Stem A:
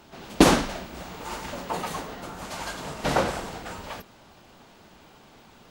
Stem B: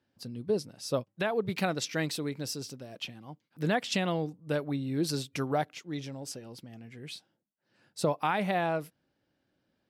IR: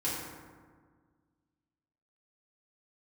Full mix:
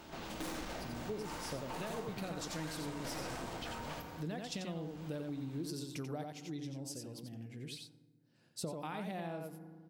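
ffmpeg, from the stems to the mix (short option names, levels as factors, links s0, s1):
-filter_complex "[0:a]aeval=exprs='(tanh(56.2*val(0)+0.45)-tanh(0.45))/56.2':c=same,volume=0.841,asplit=2[s0][s1];[s1]volume=0.335[s2];[1:a]equalizer=f=1400:t=o:w=2.9:g=-8.5,adelay=600,volume=0.891,asplit=3[s3][s4][s5];[s4]volume=0.106[s6];[s5]volume=0.596[s7];[2:a]atrim=start_sample=2205[s8];[s2][s6]amix=inputs=2:normalize=0[s9];[s9][s8]afir=irnorm=-1:irlink=0[s10];[s7]aecho=0:1:89:1[s11];[s0][s3][s10][s11]amix=inputs=4:normalize=0,acompressor=threshold=0.00891:ratio=3"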